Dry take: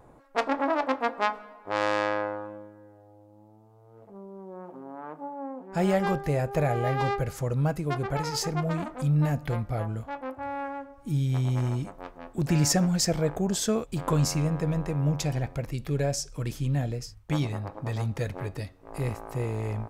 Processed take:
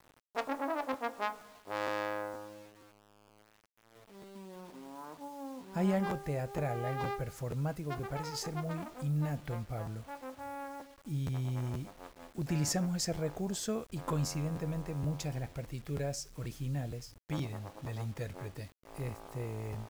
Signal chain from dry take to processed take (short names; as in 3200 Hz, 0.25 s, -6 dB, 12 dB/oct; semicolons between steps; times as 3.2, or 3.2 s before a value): 4.35–6.06 small resonant body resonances 220/1000 Hz, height 13 dB, ringing for 90 ms; requantised 8-bit, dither none; crackling interface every 0.47 s, samples 512, repeat, from 0.45; gain -9 dB